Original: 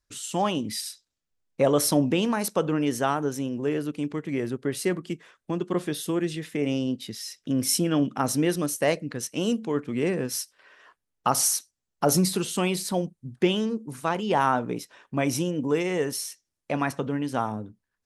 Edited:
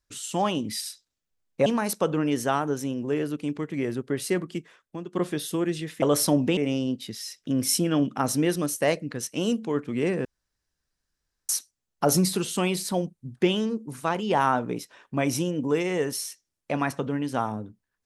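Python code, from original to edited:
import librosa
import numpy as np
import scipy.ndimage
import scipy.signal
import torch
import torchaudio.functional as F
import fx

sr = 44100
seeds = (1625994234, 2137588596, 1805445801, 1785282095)

y = fx.edit(x, sr, fx.move(start_s=1.66, length_s=0.55, to_s=6.57),
    fx.fade_out_to(start_s=5.08, length_s=0.6, floor_db=-11.5),
    fx.room_tone_fill(start_s=10.25, length_s=1.24), tone=tone)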